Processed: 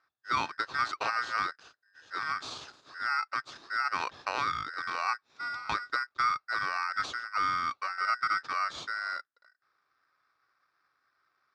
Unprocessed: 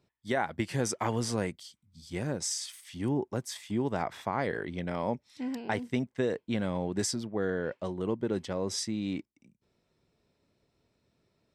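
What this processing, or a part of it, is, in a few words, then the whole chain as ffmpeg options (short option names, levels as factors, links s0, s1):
ring modulator pedal into a guitar cabinet: -filter_complex "[0:a]asettb=1/sr,asplit=3[s0][s1][s2];[s0]atrim=end=7.984[s3];[s1]atrim=start=7.98:end=8.4,asetpts=PTS-STARTPTS,afade=t=in:d=0.004:c=qsin,afade=t=out:st=0.416:d=0.004:c=qsin,lowshelf=f=110:t=q:w=3:g=-10.5[s4];[s2]atrim=start=8.396[s5];[s3][s4]acrossfade=d=0.004:c1=hsin:c2=qsin[s6];[s6][s5]acrossfade=d=0.004:c1=qsin:c2=hsin,aeval=exprs='val(0)*sgn(sin(2*PI*1700*n/s))':c=same,highpass=88,equalizer=f=200:t=q:w=4:g=-9,equalizer=f=1200:t=q:w=4:g=8,equalizer=f=2000:t=q:w=4:g=-9,equalizer=f=3000:t=q:w=4:g=-9,lowpass=f=4500:w=0.5412,lowpass=f=4500:w=1.3066"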